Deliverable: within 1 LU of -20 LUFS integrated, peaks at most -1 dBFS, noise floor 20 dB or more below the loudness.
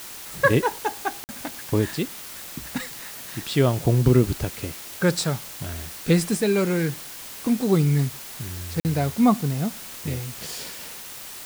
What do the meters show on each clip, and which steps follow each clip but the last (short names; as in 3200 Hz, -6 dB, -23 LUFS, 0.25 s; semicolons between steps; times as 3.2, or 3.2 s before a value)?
dropouts 2; longest dropout 49 ms; noise floor -39 dBFS; noise floor target -45 dBFS; loudness -24.5 LUFS; peak -6.0 dBFS; loudness target -20.0 LUFS
-> interpolate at 1.24/8.8, 49 ms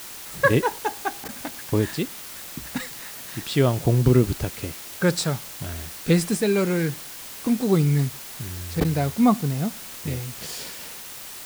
dropouts 0; noise floor -39 dBFS; noise floor target -45 dBFS
-> denoiser 6 dB, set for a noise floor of -39 dBFS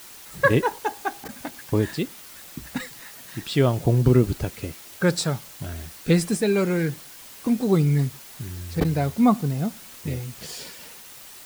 noise floor -44 dBFS; loudness -23.5 LUFS; peak -6.0 dBFS; loudness target -20.0 LUFS
-> gain +3.5 dB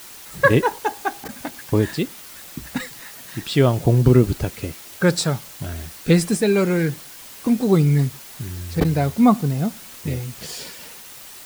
loudness -20.0 LUFS; peak -2.5 dBFS; noise floor -40 dBFS